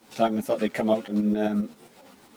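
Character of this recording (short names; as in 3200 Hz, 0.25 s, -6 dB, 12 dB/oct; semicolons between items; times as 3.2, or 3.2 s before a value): a quantiser's noise floor 10-bit, dither none; tremolo saw up 7.5 Hz, depth 60%; a shimmering, thickened sound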